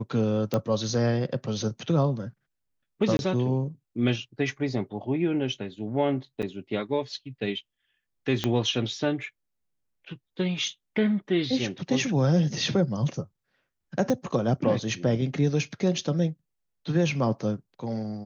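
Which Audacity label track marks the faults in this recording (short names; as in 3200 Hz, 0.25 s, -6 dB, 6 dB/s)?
0.540000	0.540000	pop -13 dBFS
3.170000	3.190000	gap 21 ms
6.420000	6.430000	gap 7.5 ms
8.440000	8.440000	pop -11 dBFS
14.100000	14.100000	pop -14 dBFS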